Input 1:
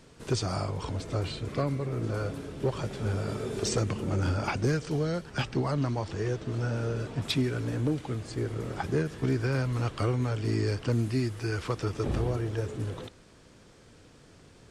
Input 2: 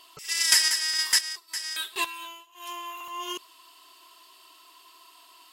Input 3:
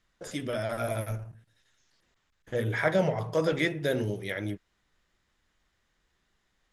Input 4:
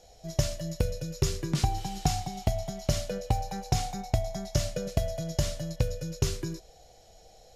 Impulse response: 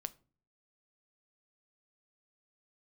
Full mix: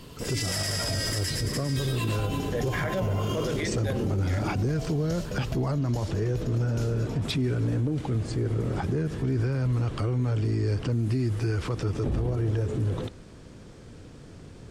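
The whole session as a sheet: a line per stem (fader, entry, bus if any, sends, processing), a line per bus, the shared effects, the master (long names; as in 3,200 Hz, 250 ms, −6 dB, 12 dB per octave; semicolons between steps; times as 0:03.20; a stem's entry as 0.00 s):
+2.5 dB, 0.00 s, no send, no echo send, low-shelf EQ 460 Hz +9 dB
−0.5 dB, 0.00 s, no send, echo send −3.5 dB, no processing
+2.5 dB, 0.00 s, no send, no echo send, no processing
−4.5 dB, 0.55 s, no send, no echo send, no processing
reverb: not used
echo: repeating echo 112 ms, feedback 50%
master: brickwall limiter −20 dBFS, peak gain reduction 16 dB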